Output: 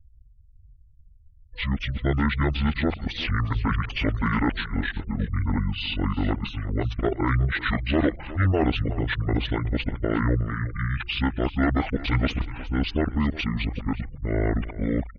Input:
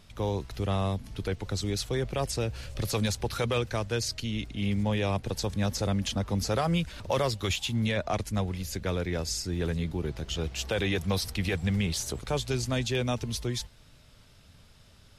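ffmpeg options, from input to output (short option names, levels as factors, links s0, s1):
-filter_complex "[0:a]areverse,acrossover=split=6800[s0][s1];[s1]acompressor=threshold=0.00158:ratio=4:attack=1:release=60[s2];[s0][s2]amix=inputs=2:normalize=0,afftfilt=real='re*gte(hypot(re,im),0.00501)':imag='im*gte(hypot(re,im),0.00501)':win_size=1024:overlap=0.75,bandreject=f=50:t=h:w=6,bandreject=f=100:t=h:w=6,bandreject=f=150:t=h:w=6,bandreject=f=200:t=h:w=6,acontrast=58,asetrate=24750,aresample=44100,atempo=1.7818,aecho=1:1:363:0.158"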